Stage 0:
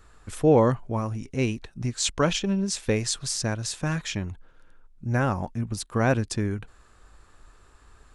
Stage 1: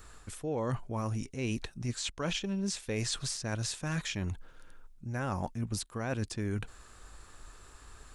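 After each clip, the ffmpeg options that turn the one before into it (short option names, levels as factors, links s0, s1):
-filter_complex "[0:a]acrossover=split=3300[s0][s1];[s1]acompressor=threshold=0.0112:ratio=4:attack=1:release=60[s2];[s0][s2]amix=inputs=2:normalize=0,highshelf=f=4000:g=8.5,areverse,acompressor=threshold=0.0282:ratio=16,areverse,volume=1.12"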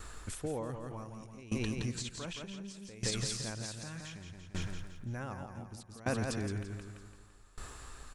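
-filter_complex "[0:a]asplit=2[s0][s1];[s1]aecho=0:1:169|338|507|676|845|1014|1183:0.631|0.334|0.177|0.0939|0.0498|0.0264|0.014[s2];[s0][s2]amix=inputs=2:normalize=0,alimiter=level_in=1.58:limit=0.0631:level=0:latency=1:release=191,volume=0.631,aeval=exprs='val(0)*pow(10,-20*if(lt(mod(0.66*n/s,1),2*abs(0.66)/1000),1-mod(0.66*n/s,1)/(2*abs(0.66)/1000),(mod(0.66*n/s,1)-2*abs(0.66)/1000)/(1-2*abs(0.66)/1000))/20)':c=same,volume=2"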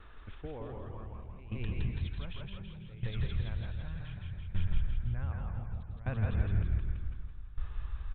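-filter_complex "[0:a]asplit=7[s0][s1][s2][s3][s4][s5][s6];[s1]adelay=164,afreqshift=-38,volume=0.708[s7];[s2]adelay=328,afreqshift=-76,volume=0.331[s8];[s3]adelay=492,afreqshift=-114,volume=0.157[s9];[s4]adelay=656,afreqshift=-152,volume=0.0733[s10];[s5]adelay=820,afreqshift=-190,volume=0.0347[s11];[s6]adelay=984,afreqshift=-228,volume=0.0162[s12];[s0][s7][s8][s9][s10][s11][s12]amix=inputs=7:normalize=0,aresample=8000,aresample=44100,asubboost=boost=9.5:cutoff=100,volume=0.501"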